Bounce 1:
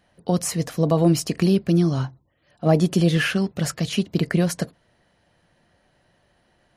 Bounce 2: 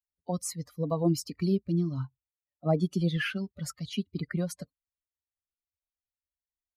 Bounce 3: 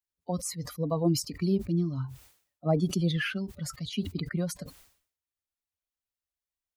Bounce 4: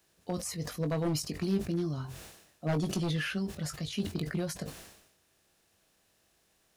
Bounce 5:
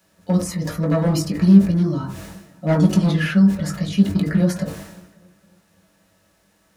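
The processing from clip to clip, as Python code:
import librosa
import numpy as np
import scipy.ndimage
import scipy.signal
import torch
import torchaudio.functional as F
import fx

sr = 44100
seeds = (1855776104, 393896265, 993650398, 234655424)

y1 = fx.bin_expand(x, sr, power=2.0)
y1 = y1 * librosa.db_to_amplitude(-6.0)
y2 = fx.sustainer(y1, sr, db_per_s=110.0)
y3 = fx.bin_compress(y2, sr, power=0.6)
y3 = 10.0 ** (-18.0 / 20.0) * (np.abs((y3 / 10.0 ** (-18.0 / 20.0) + 3.0) % 4.0 - 2.0) - 1.0)
y3 = fx.doubler(y3, sr, ms=20.0, db=-8.5)
y3 = y3 * librosa.db_to_amplitude(-5.5)
y4 = fx.echo_bbd(y3, sr, ms=272, stages=4096, feedback_pct=49, wet_db=-23)
y4 = fx.rev_fdn(y4, sr, rt60_s=0.38, lf_ratio=1.2, hf_ratio=0.25, size_ms=31.0, drr_db=-3.5)
y4 = y4 * librosa.db_to_amplitude(5.5)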